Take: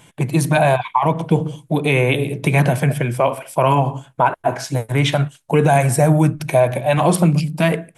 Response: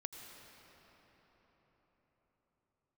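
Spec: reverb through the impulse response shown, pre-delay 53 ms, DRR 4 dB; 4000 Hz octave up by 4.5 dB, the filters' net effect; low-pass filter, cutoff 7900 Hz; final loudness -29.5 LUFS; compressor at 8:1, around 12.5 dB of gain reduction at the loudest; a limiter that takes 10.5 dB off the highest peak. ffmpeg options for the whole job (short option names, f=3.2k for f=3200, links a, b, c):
-filter_complex "[0:a]lowpass=7.9k,equalizer=f=4k:t=o:g=6,acompressor=threshold=-23dB:ratio=8,alimiter=limit=-22dB:level=0:latency=1,asplit=2[a][b];[1:a]atrim=start_sample=2205,adelay=53[c];[b][c]afir=irnorm=-1:irlink=0,volume=-1.5dB[d];[a][d]amix=inputs=2:normalize=0,volume=0.5dB"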